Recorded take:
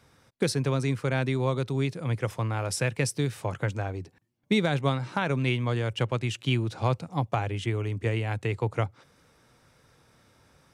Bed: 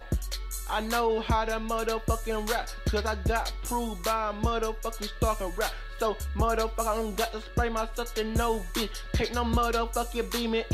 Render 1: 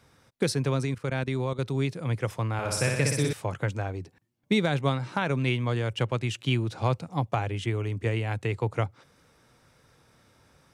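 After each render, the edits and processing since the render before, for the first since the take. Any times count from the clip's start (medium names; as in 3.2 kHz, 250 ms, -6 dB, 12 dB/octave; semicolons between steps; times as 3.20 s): 0.85–1.59 s: level held to a coarse grid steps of 14 dB; 2.53–3.33 s: flutter echo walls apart 10.4 m, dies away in 1 s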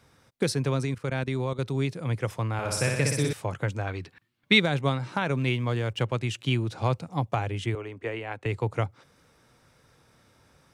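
3.87–4.60 s: high-order bell 2.2 kHz +11 dB 2.3 oct; 5.35–6.03 s: hysteresis with a dead band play -52.5 dBFS; 7.75–8.46 s: three-band isolator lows -15 dB, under 300 Hz, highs -12 dB, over 3.1 kHz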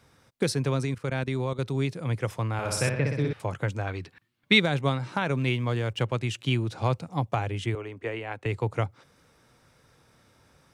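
2.89–3.40 s: distance through air 350 m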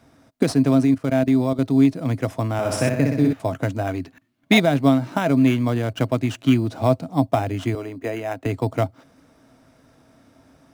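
in parallel at -7 dB: sample-and-hold 10×; on the sum: small resonant body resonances 270/650 Hz, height 15 dB, ringing for 70 ms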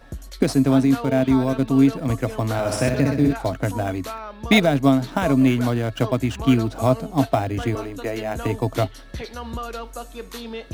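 add bed -5 dB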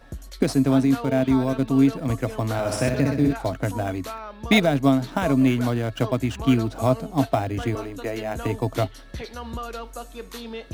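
trim -2 dB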